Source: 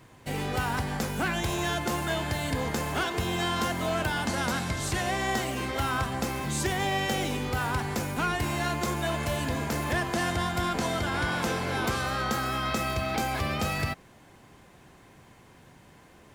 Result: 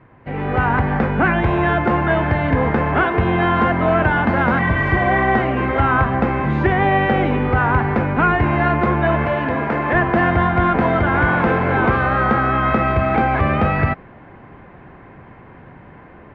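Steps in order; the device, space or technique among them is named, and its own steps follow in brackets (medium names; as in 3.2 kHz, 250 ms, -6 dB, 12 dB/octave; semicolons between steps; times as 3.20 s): 4.62–5.28 s: spectral replace 930–4100 Hz after; 9.26–9.95 s: high-pass 270 Hz 6 dB/octave; action camera in a waterproof case (low-pass 2.1 kHz 24 dB/octave; level rider gain up to 8 dB; trim +5 dB; AAC 64 kbps 16 kHz)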